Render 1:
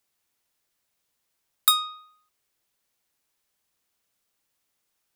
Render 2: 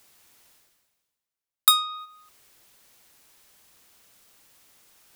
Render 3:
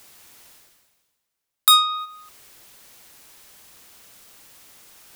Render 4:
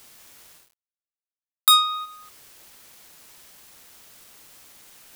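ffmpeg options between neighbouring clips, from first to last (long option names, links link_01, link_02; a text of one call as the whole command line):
ffmpeg -i in.wav -af "agate=range=-17dB:threshold=-46dB:ratio=16:detection=peak,areverse,acompressor=mode=upward:threshold=-34dB:ratio=2.5,areverse,volume=2dB" out.wav
ffmpeg -i in.wav -af "alimiter=level_in=10dB:limit=-1dB:release=50:level=0:latency=1,volume=-1dB" out.wav
ffmpeg -i in.wav -af "acrusher=bits=7:mix=0:aa=0.000001,volume=-1.5dB" out.wav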